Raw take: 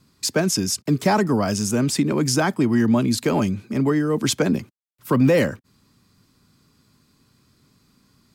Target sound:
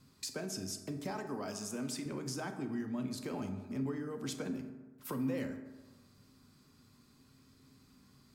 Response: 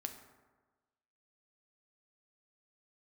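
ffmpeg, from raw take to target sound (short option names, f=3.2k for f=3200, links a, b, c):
-filter_complex "[0:a]asettb=1/sr,asplit=3[a][b][c];[a]atrim=end=1.114[d];[b]atrim=start=1.11:end=2.06,asetpts=PTS-STARTPTS,afade=t=in:d=0.004:c=qsin,afade=t=out:st=0.946:d=0.004:c=qsin,highpass=f=350:p=1[e];[c]atrim=start=2.056[f];[d][e]acrossfade=d=0.004:c1=hsin:c2=qsin[g];[g][f]acrossfade=d=0.004:c1=qsin:c2=hsin,acompressor=threshold=-38dB:ratio=3[h];[1:a]atrim=start_sample=2205[i];[h][i]afir=irnorm=-1:irlink=0,volume=-2.5dB"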